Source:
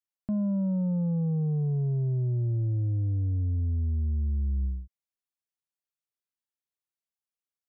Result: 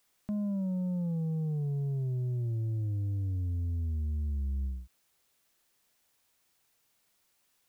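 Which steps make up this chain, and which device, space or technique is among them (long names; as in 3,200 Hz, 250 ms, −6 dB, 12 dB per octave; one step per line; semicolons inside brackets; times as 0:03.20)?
noise-reduction cassette on a plain deck (one half of a high-frequency compander encoder only; tape wow and flutter 25 cents; white noise bed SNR 39 dB)
level −5 dB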